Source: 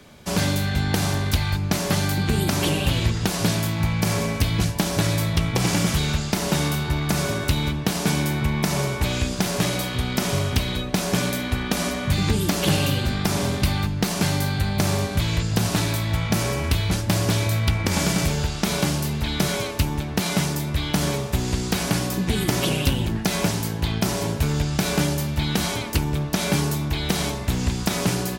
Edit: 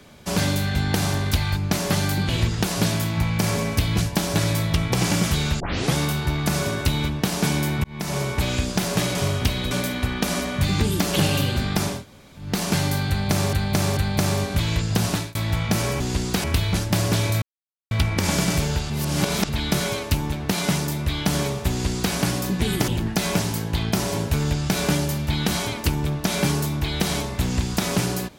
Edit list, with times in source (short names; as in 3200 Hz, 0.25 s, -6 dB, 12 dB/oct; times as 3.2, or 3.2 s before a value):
2.29–2.92 cut
6.23 tape start 0.35 s
8.47–9.03 fade in equal-power
9.78–10.26 cut
10.82–11.2 cut
13.43–13.96 room tone, crossfade 0.24 s
14.58–15.02 loop, 3 plays
15.71–15.96 fade out
17.59 insert silence 0.49 s
18.58–19.17 reverse
21.38–21.82 copy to 16.61
22.56–22.97 cut